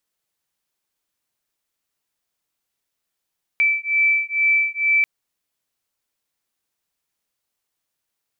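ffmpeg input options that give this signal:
ffmpeg -f lavfi -i "aevalsrc='0.112*(sin(2*PI*2320*t)+sin(2*PI*2322.2*t))':duration=1.44:sample_rate=44100" out.wav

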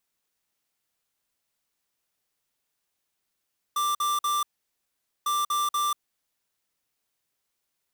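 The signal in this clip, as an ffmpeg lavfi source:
ffmpeg -f lavfi -i "aevalsrc='0.0531*(2*lt(mod(1180*t,1),0.5)-1)*clip(min(mod(mod(t,1.5),0.24),0.19-mod(mod(t,1.5),0.24))/0.005,0,1)*lt(mod(t,1.5),0.72)':duration=3:sample_rate=44100" out.wav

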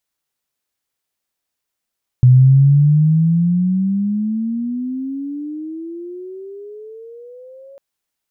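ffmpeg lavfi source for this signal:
ffmpeg -f lavfi -i "aevalsrc='pow(10,(-4.5-32.5*t/5.55)/20)*sin(2*PI*124*5.55/(26*log(2)/12)*(exp(26*log(2)/12*t/5.55)-1))':duration=5.55:sample_rate=44100" out.wav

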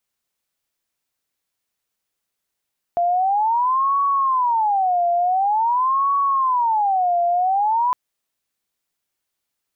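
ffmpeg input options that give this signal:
ffmpeg -f lavfi -i "aevalsrc='0.168*sin(2*PI*(906.5*t-213.5/(2*PI*0.47)*sin(2*PI*0.47*t)))':duration=4.96:sample_rate=44100" out.wav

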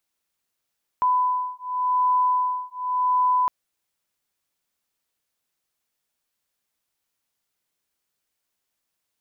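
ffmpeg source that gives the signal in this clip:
ffmpeg -f lavfi -i "aevalsrc='0.075*(sin(2*PI*1000*t)+sin(2*PI*1000.89*t))':duration=2.46:sample_rate=44100" out.wav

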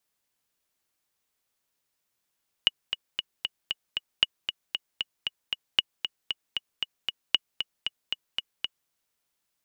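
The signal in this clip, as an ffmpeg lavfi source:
ffmpeg -f lavfi -i "aevalsrc='pow(10,(-6-8.5*gte(mod(t,6*60/231),60/231))/20)*sin(2*PI*2910*mod(t,60/231))*exp(-6.91*mod(t,60/231)/0.03)':duration=6.23:sample_rate=44100" out.wav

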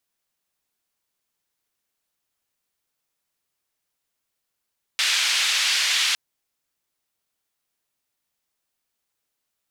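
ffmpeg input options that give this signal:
ffmpeg -f lavfi -i "anoisesrc=color=white:duration=1.16:sample_rate=44100:seed=1,highpass=frequency=2300,lowpass=frequency=3900,volume=-6.1dB" out.wav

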